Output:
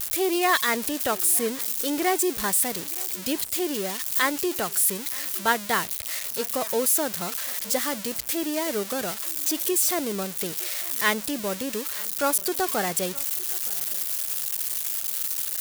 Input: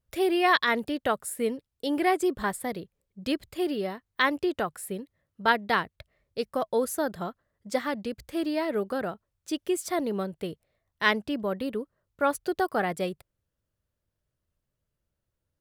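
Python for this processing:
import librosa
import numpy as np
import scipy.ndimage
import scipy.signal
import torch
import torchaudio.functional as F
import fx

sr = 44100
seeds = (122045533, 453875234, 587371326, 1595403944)

p1 = x + 0.5 * 10.0 ** (-17.5 / 20.0) * np.diff(np.sign(x), prepend=np.sign(x[:1]))
y = p1 + fx.echo_single(p1, sr, ms=917, db=-22.5, dry=0)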